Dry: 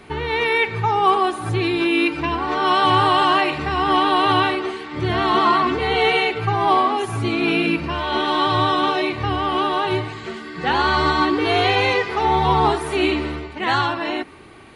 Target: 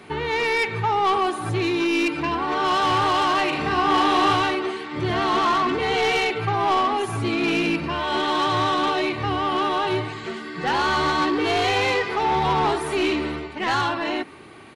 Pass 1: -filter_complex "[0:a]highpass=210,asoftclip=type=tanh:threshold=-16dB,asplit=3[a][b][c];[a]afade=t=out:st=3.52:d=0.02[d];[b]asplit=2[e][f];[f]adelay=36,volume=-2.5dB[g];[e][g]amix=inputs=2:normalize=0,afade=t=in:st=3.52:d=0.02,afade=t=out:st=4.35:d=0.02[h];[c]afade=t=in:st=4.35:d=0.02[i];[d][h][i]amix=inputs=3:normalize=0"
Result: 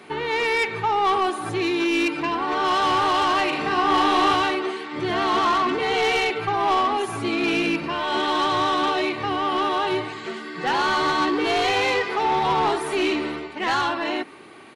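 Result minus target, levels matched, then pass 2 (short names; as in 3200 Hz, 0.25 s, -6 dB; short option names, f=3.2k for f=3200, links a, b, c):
125 Hz band -7.0 dB
-filter_complex "[0:a]highpass=100,asoftclip=type=tanh:threshold=-16dB,asplit=3[a][b][c];[a]afade=t=out:st=3.52:d=0.02[d];[b]asplit=2[e][f];[f]adelay=36,volume=-2.5dB[g];[e][g]amix=inputs=2:normalize=0,afade=t=in:st=3.52:d=0.02,afade=t=out:st=4.35:d=0.02[h];[c]afade=t=in:st=4.35:d=0.02[i];[d][h][i]amix=inputs=3:normalize=0"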